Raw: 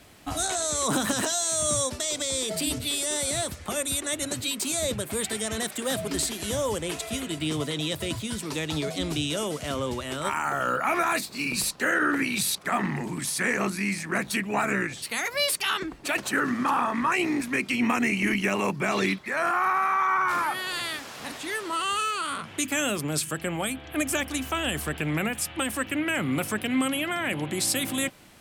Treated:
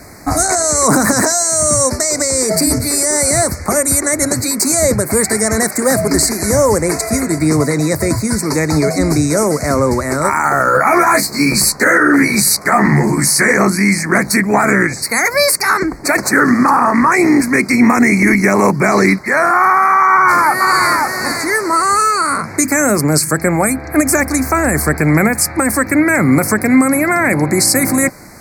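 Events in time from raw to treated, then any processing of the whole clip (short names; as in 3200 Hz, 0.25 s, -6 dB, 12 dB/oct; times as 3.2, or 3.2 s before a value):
10.66–13.52 doubler 14 ms -2.5 dB
20.06–20.9 echo throw 0.54 s, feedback 10%, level -4 dB
whole clip: elliptic band-stop 2200–4400 Hz, stop band 60 dB; maximiser +17.5 dB; gain -1 dB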